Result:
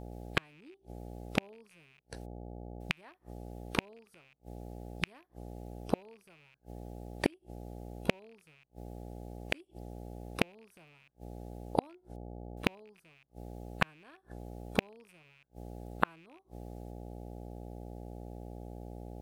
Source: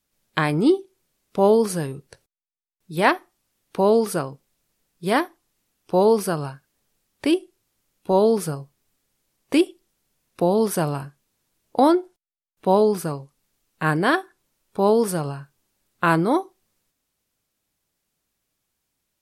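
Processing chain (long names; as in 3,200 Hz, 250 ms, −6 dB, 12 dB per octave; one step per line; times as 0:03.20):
loose part that buzzes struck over −37 dBFS, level −12 dBFS
hum with harmonics 60 Hz, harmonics 14, −48 dBFS −4 dB per octave
gate with flip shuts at −13 dBFS, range −41 dB
level +3 dB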